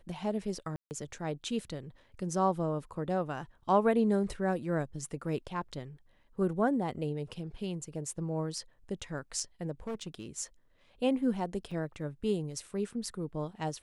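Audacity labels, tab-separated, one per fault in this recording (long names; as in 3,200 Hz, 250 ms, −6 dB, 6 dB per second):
0.760000	0.910000	drop-out 149 ms
9.870000	10.260000	clipping −33 dBFS
11.710000	11.710000	drop-out 4.7 ms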